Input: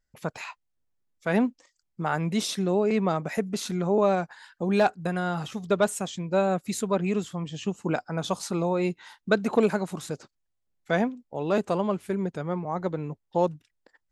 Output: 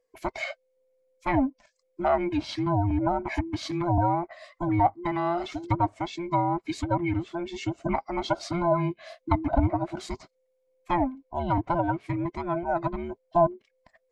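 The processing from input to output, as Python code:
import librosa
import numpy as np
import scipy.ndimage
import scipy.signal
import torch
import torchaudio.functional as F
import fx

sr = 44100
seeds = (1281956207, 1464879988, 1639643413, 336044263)

y = fx.band_invert(x, sr, width_hz=500)
y = fx.env_lowpass_down(y, sr, base_hz=840.0, full_db=-19.5)
y = fx.dynamic_eq(y, sr, hz=4600.0, q=2.5, threshold_db=-57.0, ratio=4.0, max_db=6)
y = fx.small_body(y, sr, hz=(650.0, 2200.0), ring_ms=25, db=13)
y = y * librosa.db_to_amplitude(-1.5)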